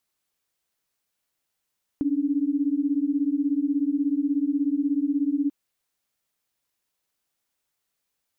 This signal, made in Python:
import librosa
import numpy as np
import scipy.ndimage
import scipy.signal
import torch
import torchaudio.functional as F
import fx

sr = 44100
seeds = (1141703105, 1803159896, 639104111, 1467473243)

y = fx.chord(sr, length_s=3.49, notes=(61, 62), wave='sine', level_db=-24.0)